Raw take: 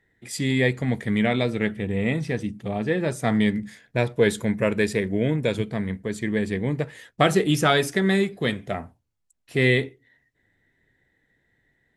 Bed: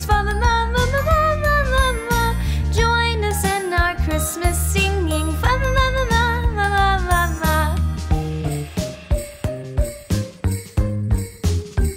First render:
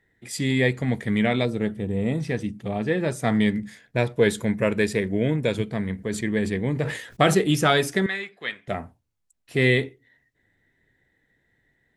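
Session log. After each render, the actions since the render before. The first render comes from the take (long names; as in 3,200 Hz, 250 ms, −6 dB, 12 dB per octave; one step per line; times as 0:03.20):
0:01.45–0:02.20: parametric band 2,200 Hz −10.5 dB 1.4 octaves
0:05.95–0:07.36: level that may fall only so fast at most 82 dB per second
0:08.06–0:08.68: resonant band-pass 2,000 Hz, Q 1.1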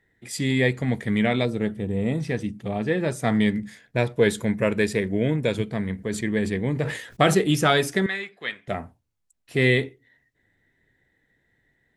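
no processing that can be heard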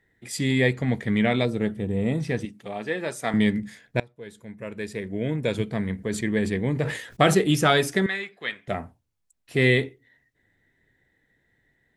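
0:00.74–0:01.28: parametric band 10,000 Hz −6.5 dB
0:02.45–0:03.34: high-pass filter 620 Hz 6 dB per octave
0:04.00–0:05.65: fade in quadratic, from −24 dB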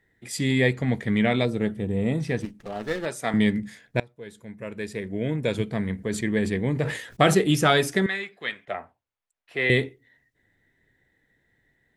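0:02.42–0:03.06: windowed peak hold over 9 samples
0:08.65–0:09.70: three-way crossover with the lows and the highs turned down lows −17 dB, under 460 Hz, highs −15 dB, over 3,500 Hz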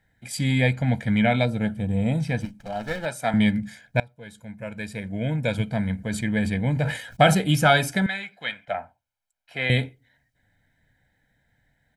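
comb filter 1.3 ms, depth 79%
dynamic equaliser 6,200 Hz, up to −4 dB, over −47 dBFS, Q 1.5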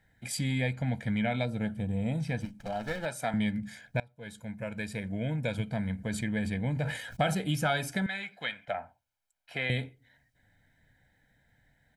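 downward compressor 2 to 1, threshold −34 dBFS, peak gain reduction 12.5 dB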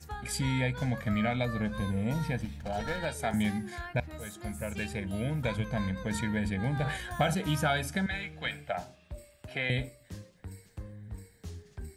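mix in bed −23.5 dB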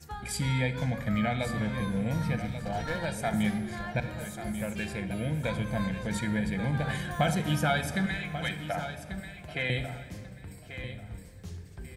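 repeating echo 1,139 ms, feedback 24%, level −11 dB
rectangular room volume 3,300 cubic metres, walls mixed, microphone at 0.84 metres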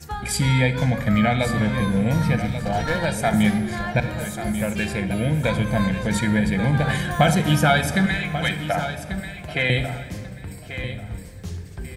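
level +9.5 dB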